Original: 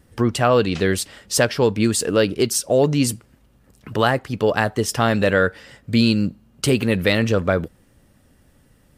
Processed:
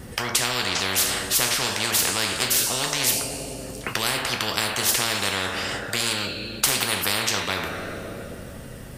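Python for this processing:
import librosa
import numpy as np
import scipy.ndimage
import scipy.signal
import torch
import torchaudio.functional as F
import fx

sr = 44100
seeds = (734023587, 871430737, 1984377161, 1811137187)

y = fx.rev_double_slope(x, sr, seeds[0], early_s=0.33, late_s=2.4, knee_db=-22, drr_db=3.5)
y = fx.spectral_comp(y, sr, ratio=10.0)
y = y * 10.0 ** (-1.0 / 20.0)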